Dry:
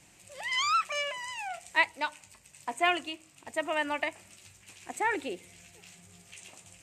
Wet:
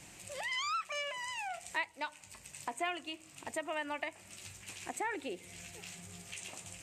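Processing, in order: compression 2.5:1, threshold -46 dBFS, peak gain reduction 17.5 dB; trim +5 dB

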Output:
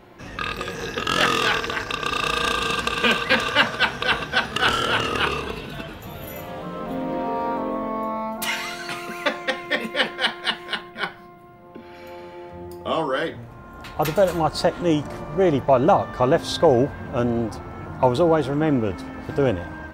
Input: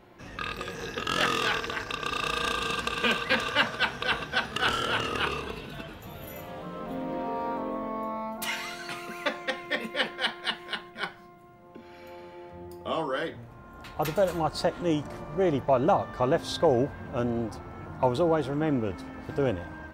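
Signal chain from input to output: 10.81–11.95 s: peaking EQ 6.9 kHz -8.5 dB 0.61 oct; trim +6.5 dB

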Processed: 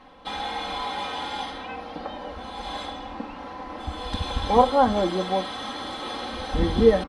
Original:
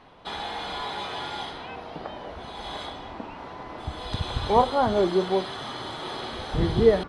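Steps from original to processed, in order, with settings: comb 3.8 ms, depth 82%

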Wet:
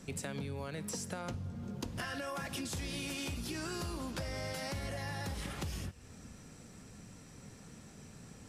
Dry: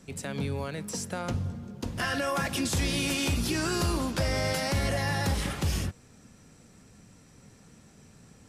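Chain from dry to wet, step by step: on a send at -13.5 dB: amplifier tone stack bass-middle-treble 10-0-10 + reverberation RT60 1.0 s, pre-delay 5 ms; on the sum: compression 12:1, threshold -38 dBFS, peak gain reduction 14.5 dB; trim +1.5 dB

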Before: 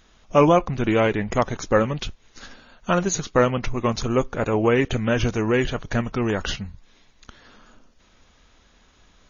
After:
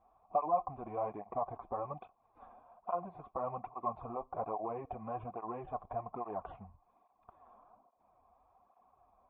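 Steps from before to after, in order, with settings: peaking EQ 2.3 kHz -4 dB 2.7 oct; peak limiter -14.5 dBFS, peak gain reduction 8 dB; compression 2:1, threshold -28 dBFS, peak gain reduction 5.5 dB; cascade formant filter a; cancelling through-zero flanger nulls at 1.2 Hz, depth 7.4 ms; trim +10.5 dB

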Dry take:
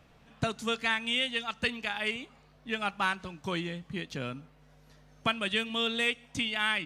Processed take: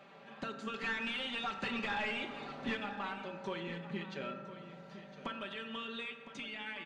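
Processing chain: high-pass 320 Hz 12 dB/octave; treble shelf 2.7 kHz +9.5 dB; band-stop 5.4 kHz, Q 12; comb 5.1 ms, depth 83%; peak limiter -18 dBFS, peak gain reduction 9.5 dB; compression 2.5:1, threshold -45 dBFS, peak gain reduction 14 dB; 0.74–2.77 s: waveshaping leveller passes 3; saturation -32 dBFS, distortion -17 dB; tape spacing loss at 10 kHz 32 dB; delay 1010 ms -13.5 dB; reverberation RT60 2.1 s, pre-delay 3 ms, DRR 5 dB; endings held to a fixed fall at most 180 dB/s; trim +6 dB

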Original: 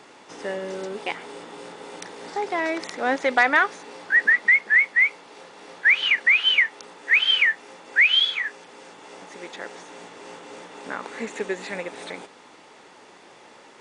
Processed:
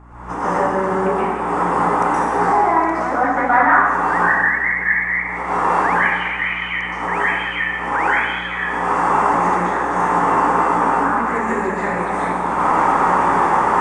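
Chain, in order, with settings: recorder AGC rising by 60 dB/s; FFT filter 260 Hz 0 dB, 470 Hz -7 dB, 1.1 kHz +7 dB, 4.1 kHz -26 dB, 7.9 kHz -14 dB; hum 60 Hz, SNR 16 dB; plate-style reverb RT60 1.4 s, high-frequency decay 1×, pre-delay 110 ms, DRR -9.5 dB; trim -3.5 dB

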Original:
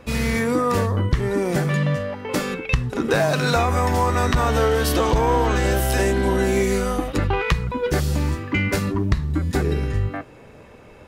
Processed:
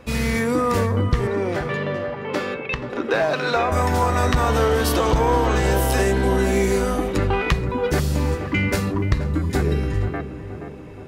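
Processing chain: 1.27–3.72 s: three-band isolator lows -13 dB, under 270 Hz, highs -16 dB, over 4.6 kHz; tape echo 476 ms, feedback 68%, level -7.5 dB, low-pass 1.3 kHz

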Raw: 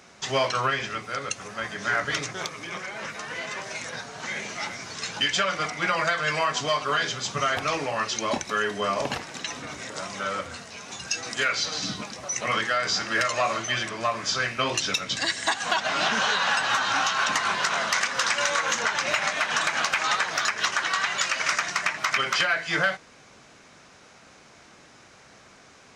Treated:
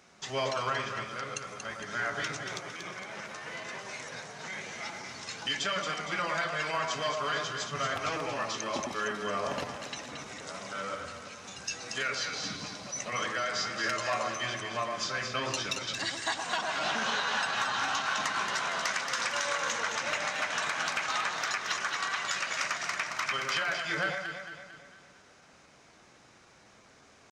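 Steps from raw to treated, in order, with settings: echo whose repeats swap between lows and highs 108 ms, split 1.2 kHz, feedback 69%, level -3 dB; tempo 0.95×; trim -8 dB

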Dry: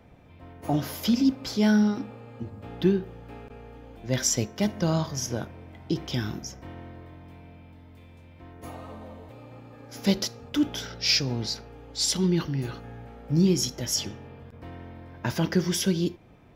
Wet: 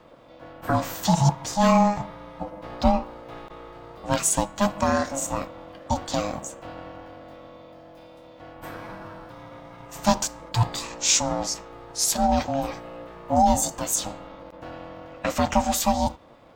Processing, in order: ring modulator 410 Hz; formant shift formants +4 st; trim +5.5 dB

